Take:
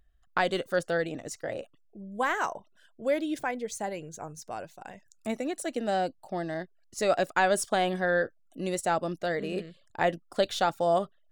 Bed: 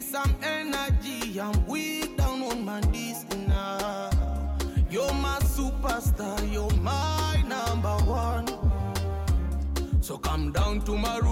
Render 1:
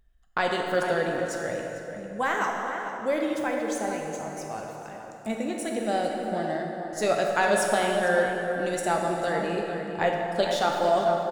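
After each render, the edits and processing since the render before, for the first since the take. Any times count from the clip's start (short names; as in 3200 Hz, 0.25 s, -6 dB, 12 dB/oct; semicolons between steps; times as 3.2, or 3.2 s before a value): outdoor echo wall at 77 m, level -8 dB; plate-style reverb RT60 3 s, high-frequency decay 0.65×, DRR 0.5 dB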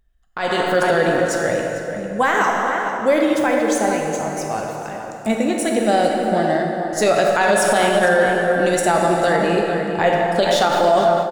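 limiter -17.5 dBFS, peak gain reduction 7 dB; AGC gain up to 11 dB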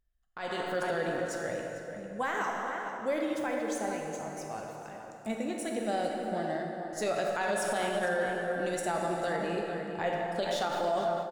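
gain -15 dB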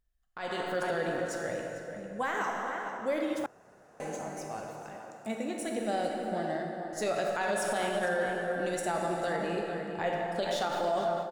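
3.46–4 room tone; 4.97–5.59 HPF 140 Hz 6 dB/oct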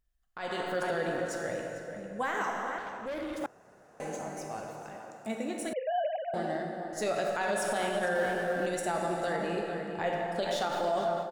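2.78–3.42 tube stage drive 33 dB, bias 0.3; 5.73–6.34 sine-wave speech; 8.15–8.66 G.711 law mismatch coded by mu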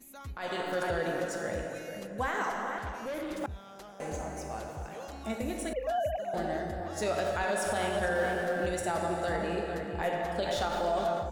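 add bed -18.5 dB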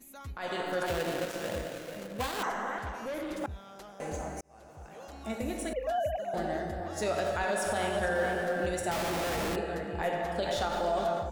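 0.86–2.43 switching dead time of 0.22 ms; 4.41–5.43 fade in; 8.91–9.56 Schmitt trigger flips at -42 dBFS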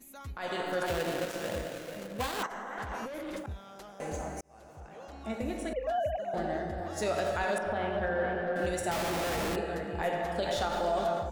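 2.46–3.53 negative-ratio compressor -39 dBFS; 4.8–6.78 LPF 4000 Hz 6 dB/oct; 7.58–8.56 air absorption 360 m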